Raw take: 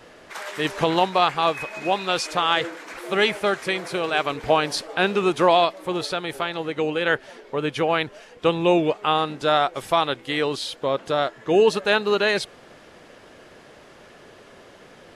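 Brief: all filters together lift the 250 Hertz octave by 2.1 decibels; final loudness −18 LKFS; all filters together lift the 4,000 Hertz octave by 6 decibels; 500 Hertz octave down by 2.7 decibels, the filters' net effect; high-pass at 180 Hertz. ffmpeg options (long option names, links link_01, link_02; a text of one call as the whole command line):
ffmpeg -i in.wav -af "highpass=180,equalizer=frequency=250:width_type=o:gain=8,equalizer=frequency=500:width_type=o:gain=-6,equalizer=frequency=4000:width_type=o:gain=7.5,volume=3.5dB" out.wav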